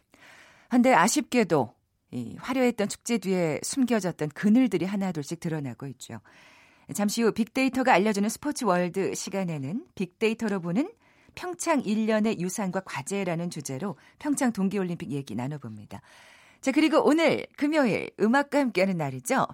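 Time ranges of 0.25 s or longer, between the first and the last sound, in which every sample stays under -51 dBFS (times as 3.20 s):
1.72–2.12 s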